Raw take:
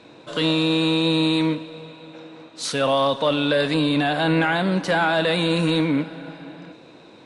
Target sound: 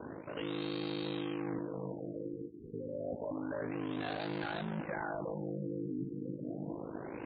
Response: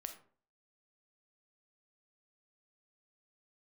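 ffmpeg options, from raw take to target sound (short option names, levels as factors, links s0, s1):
-filter_complex "[0:a]asplit=2[s0][s1];[s1]acrusher=samples=27:mix=1:aa=0.000001:lfo=1:lforange=16.2:lforate=3.5,volume=0.447[s2];[s0][s2]amix=inputs=2:normalize=0,asoftclip=type=tanh:threshold=0.0668,highpass=f=58:w=0.5412,highpass=f=58:w=1.3066,aeval=exprs='val(0)*sin(2*PI*26*n/s)':c=same,areverse,acompressor=threshold=0.00794:ratio=6,areverse,afftfilt=real='re*lt(b*sr/1024,470*pow(4800/470,0.5+0.5*sin(2*PI*0.29*pts/sr)))':imag='im*lt(b*sr/1024,470*pow(4800/470,0.5+0.5*sin(2*PI*0.29*pts/sr)))':win_size=1024:overlap=0.75,volume=1.88"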